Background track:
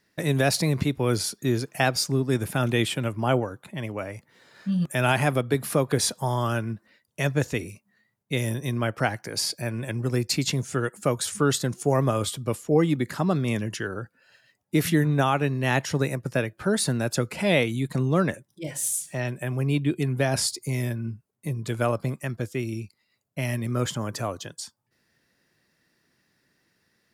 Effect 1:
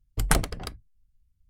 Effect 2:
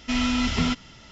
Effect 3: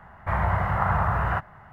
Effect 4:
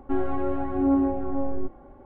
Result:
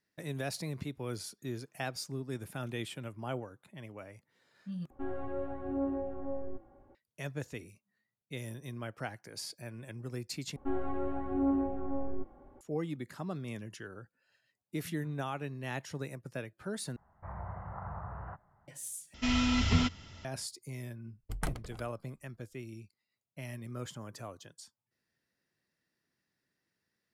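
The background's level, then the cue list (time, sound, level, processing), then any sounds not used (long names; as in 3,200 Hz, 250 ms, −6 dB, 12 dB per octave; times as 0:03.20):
background track −15 dB
0:04.90: overwrite with 4 −4.5 dB + tuned comb filter 110 Hz, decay 0.18 s, harmonics odd, mix 70%
0:10.56: overwrite with 4 −8 dB
0:16.96: overwrite with 3 −17.5 dB + low-pass filter 1,100 Hz
0:19.14: overwrite with 2 −5.5 dB + parametric band 88 Hz +13.5 dB 0.46 octaves
0:21.12: mix in 1 −12 dB + high-shelf EQ 2,600 Hz −7 dB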